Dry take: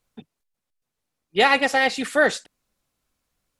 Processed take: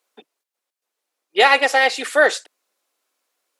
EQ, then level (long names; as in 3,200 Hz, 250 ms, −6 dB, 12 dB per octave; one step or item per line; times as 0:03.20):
high-pass filter 360 Hz 24 dB per octave
+4.0 dB